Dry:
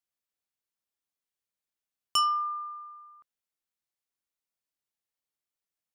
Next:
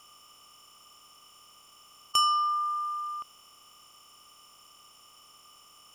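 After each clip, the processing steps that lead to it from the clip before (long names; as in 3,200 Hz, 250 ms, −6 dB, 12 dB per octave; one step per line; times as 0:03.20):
compressor on every frequency bin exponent 0.4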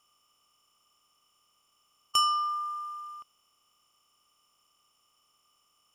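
expander for the loud parts 1.5 to 1, over −50 dBFS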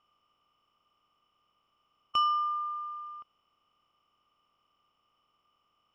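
high-frequency loss of the air 330 metres
level +1.5 dB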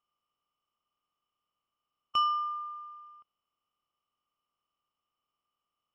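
expander for the loud parts 1.5 to 1, over −51 dBFS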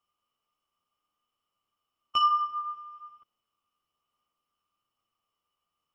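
multi-voice chorus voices 2, 0.6 Hz, delay 11 ms, depth 2.3 ms
level +6 dB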